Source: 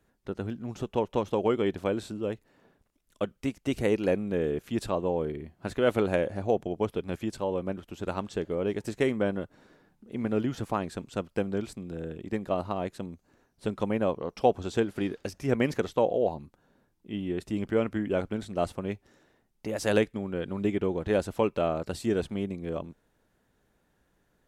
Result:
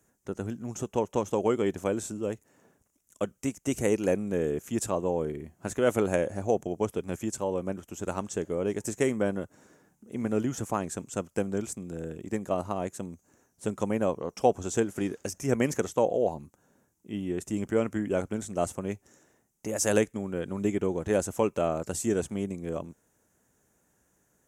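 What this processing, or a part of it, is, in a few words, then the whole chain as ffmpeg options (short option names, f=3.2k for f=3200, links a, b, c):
budget condenser microphone: -af "highpass=63,highshelf=f=5.3k:t=q:w=3:g=8"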